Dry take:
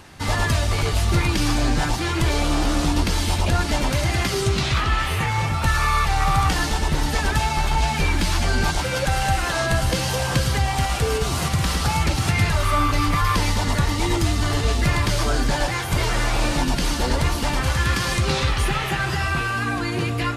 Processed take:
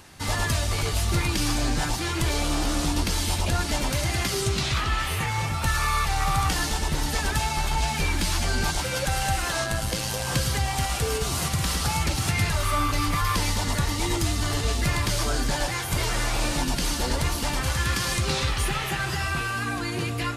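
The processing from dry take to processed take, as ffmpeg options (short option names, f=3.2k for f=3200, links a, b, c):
-filter_complex "[0:a]asettb=1/sr,asplit=3[a][b][c];[a]atrim=end=9.644[d];[b]atrim=start=9.64:end=10.27,asetpts=PTS-STARTPTS,afade=t=in:d=0.004:c=qsin,afade=t=out:st=0.626:d=0.004:c=qsin,tremolo=f=110:d=0.519[e];[c]atrim=start=10.266[f];[d][e]acrossfade=d=0.004:c1=hsin:c2=qsin[g];[g][f]acrossfade=d=0.004:c1=qsin:c2=hsin,highshelf=f=5k:g=8,volume=-5dB"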